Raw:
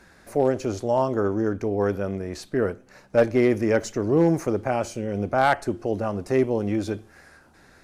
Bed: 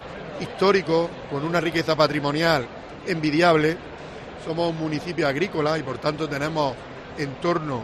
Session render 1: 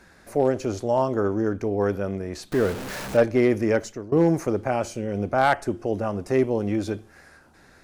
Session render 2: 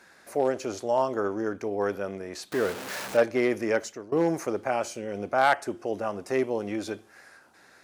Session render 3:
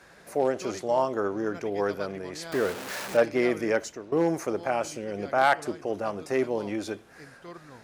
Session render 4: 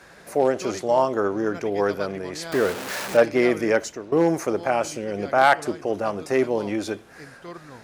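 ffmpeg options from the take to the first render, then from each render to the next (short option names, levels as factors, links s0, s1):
-filter_complex "[0:a]asettb=1/sr,asplit=3[s0][s1][s2];[s0]atrim=end=2.524[s3];[s1]atrim=start=2.52:end=3.17,asetpts=PTS-STARTPTS,afade=t=in:d=0.004:c=qsin,afade=t=out:st=0.646:d=0.004:c=qsin,aeval=exprs='val(0)+0.5*0.0398*sgn(val(0))':c=same[s4];[s2]atrim=start=3.166[s5];[s3][s4]acrossfade=d=0.004:c1=hsin:c2=qsin[s6];[s6][s5]acrossfade=d=0.004:c1=qsin:c2=hsin,asettb=1/sr,asplit=3[s7][s8][s9];[s7]atrim=end=5.534[s10];[s8]atrim=start=5.53:end=6.32,asetpts=PTS-STARTPTS,afade=t=in:d=0.004:c=qsin,afade=t=out:st=0.786:d=0.004:c=qsin,bandreject=f=4200:w=12[s11];[s9]atrim=start=6.316[s12];[s10][s11]acrossfade=d=0.004:c1=hsin:c2=qsin[s13];[s13][s12]acrossfade=d=0.004:c1=qsin:c2=hsin,asplit=2[s14][s15];[s14]atrim=end=4.12,asetpts=PTS-STARTPTS,afade=t=out:st=3.71:d=0.41:silence=0.112202[s16];[s15]atrim=start=4.12,asetpts=PTS-STARTPTS,afade=t=in:d=0.004:c=hsin:silence=0.112202[s17];[s16][s17]concat=n=2:v=0:a=1"
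-af "highpass=f=550:p=1"
-filter_complex "[1:a]volume=0.0841[s0];[0:a][s0]amix=inputs=2:normalize=0"
-af "volume=1.78"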